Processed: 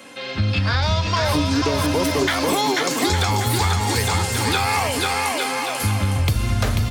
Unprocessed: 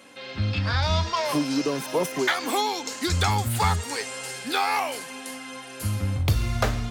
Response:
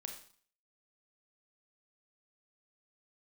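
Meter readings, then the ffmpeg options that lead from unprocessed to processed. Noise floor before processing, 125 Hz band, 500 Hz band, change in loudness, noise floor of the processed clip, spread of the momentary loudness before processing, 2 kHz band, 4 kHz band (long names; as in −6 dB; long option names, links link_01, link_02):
−40 dBFS, +5.5 dB, +5.5 dB, +5.5 dB, −29 dBFS, 10 LU, +6.0 dB, +6.5 dB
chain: -filter_complex "[0:a]acrossover=split=340|1900|2700[link_01][link_02][link_03][link_04];[link_02]alimiter=limit=-21dB:level=0:latency=1[link_05];[link_01][link_05][link_03][link_04]amix=inputs=4:normalize=0,aecho=1:1:490|857.5|1133|1340|1495:0.631|0.398|0.251|0.158|0.1,acompressor=threshold=-24dB:ratio=6,volume=8dB"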